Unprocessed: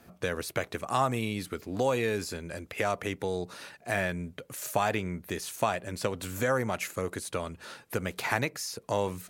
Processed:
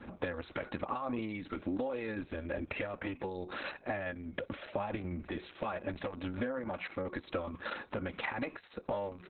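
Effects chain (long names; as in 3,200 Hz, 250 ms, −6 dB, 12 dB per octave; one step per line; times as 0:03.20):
0:06.59–0:07.25: notch filter 450 Hz, Q 12
hum removal 365.4 Hz, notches 20
0:01.49–0:01.90: high-pass filter 93 Hz 6 dB per octave
0:04.41–0:05.30: low-shelf EQ 170 Hz +7.5 dB
comb filter 3.6 ms, depth 86%
brickwall limiter −19 dBFS, peak gain reduction 9.5 dB
downward compressor 12 to 1, threshold −37 dBFS, peak gain reduction 14 dB
high-frequency loss of the air 330 metres
buffer that repeats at 0:08.61, samples 512, times 2
level +7 dB
Opus 6 kbit/s 48,000 Hz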